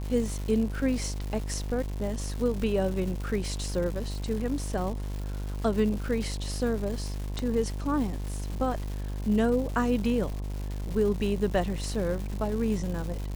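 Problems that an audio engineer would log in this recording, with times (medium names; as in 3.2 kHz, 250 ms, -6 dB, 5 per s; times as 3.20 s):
buzz 50 Hz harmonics 22 -33 dBFS
crackle 370 per s -35 dBFS
7.39 s: pop -19 dBFS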